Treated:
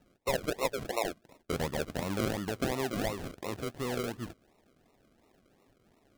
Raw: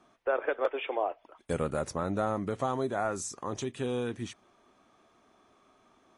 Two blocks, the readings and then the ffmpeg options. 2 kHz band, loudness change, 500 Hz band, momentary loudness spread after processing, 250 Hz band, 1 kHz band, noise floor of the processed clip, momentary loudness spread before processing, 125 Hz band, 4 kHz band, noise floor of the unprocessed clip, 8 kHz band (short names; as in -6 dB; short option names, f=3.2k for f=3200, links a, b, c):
0.0 dB, -2.0 dB, -3.0 dB, 7 LU, 0.0 dB, -4.0 dB, -69 dBFS, 6 LU, 0.0 dB, +5.0 dB, -66 dBFS, -1.0 dB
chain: -af "acrusher=samples=39:mix=1:aa=0.000001:lfo=1:lforange=23.4:lforate=2.8,volume=-2dB"